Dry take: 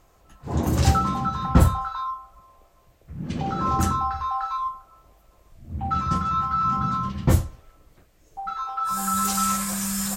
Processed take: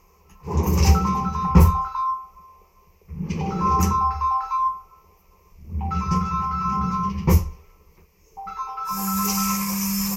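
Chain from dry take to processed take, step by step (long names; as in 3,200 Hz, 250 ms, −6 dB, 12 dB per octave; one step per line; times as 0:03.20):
EQ curve with evenly spaced ripples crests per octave 0.8, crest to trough 15 dB
level −1 dB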